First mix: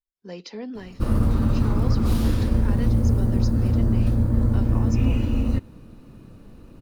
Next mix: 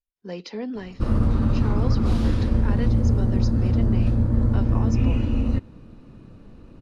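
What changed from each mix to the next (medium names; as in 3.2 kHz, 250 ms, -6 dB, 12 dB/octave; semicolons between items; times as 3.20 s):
speech +3.5 dB; master: add distance through air 73 m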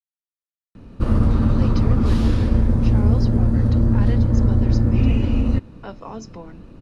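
speech: entry +1.30 s; background +3.5 dB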